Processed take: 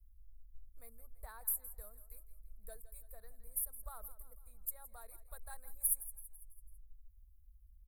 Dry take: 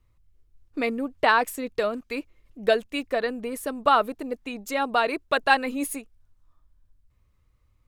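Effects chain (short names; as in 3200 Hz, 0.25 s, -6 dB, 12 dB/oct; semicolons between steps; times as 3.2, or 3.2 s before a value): inverse Chebyshev band-stop 120–6400 Hz, stop band 40 dB; on a send: feedback echo 0.166 s, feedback 51%, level -15.5 dB; on the sum: gain +6 dB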